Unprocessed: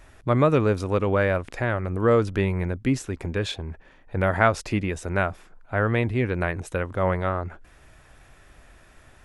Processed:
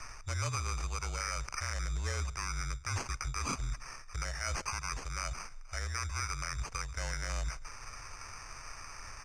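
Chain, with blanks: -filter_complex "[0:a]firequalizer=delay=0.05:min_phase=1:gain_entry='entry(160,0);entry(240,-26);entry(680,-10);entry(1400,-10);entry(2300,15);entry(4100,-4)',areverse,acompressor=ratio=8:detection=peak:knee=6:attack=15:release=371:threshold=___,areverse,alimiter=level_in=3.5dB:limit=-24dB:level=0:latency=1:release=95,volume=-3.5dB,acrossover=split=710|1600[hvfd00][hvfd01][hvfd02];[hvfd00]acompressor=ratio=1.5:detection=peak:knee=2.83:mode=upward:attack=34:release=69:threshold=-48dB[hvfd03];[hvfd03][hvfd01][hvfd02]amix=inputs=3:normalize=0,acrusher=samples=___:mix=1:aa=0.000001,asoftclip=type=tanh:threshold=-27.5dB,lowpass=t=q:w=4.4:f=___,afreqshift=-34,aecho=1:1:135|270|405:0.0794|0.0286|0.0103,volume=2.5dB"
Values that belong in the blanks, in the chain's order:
-32dB, 12, 6900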